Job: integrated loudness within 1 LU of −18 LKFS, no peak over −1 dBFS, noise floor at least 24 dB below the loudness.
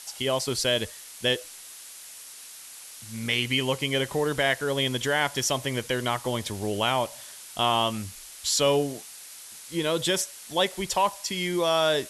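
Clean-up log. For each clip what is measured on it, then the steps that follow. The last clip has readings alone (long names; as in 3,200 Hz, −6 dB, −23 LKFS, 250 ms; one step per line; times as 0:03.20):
background noise floor −45 dBFS; target noise floor −50 dBFS; integrated loudness −26.0 LKFS; sample peak −9.5 dBFS; target loudness −18.0 LKFS
→ broadband denoise 6 dB, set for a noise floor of −45 dBFS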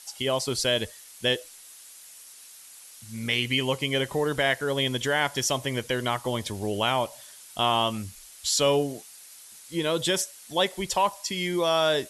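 background noise floor −48 dBFS; target noise floor −51 dBFS
→ broadband denoise 6 dB, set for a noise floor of −48 dBFS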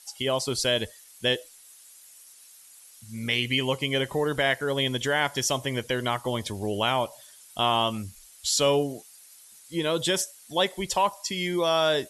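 background noise floor −52 dBFS; integrated loudness −26.5 LKFS; sample peak −10.0 dBFS; target loudness −18.0 LKFS
→ level +8.5 dB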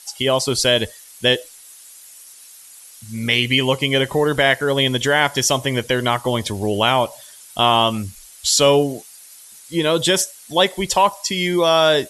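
integrated loudness −18.0 LKFS; sample peak −1.5 dBFS; background noise floor −43 dBFS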